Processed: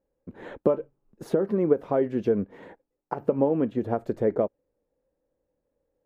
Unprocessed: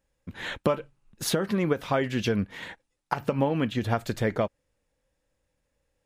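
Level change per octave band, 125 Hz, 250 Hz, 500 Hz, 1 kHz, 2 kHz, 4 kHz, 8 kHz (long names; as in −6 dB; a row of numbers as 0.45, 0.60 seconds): −5.0 dB, +1.0 dB, +4.0 dB, −3.0 dB, −12.5 dB, below −20 dB, below −20 dB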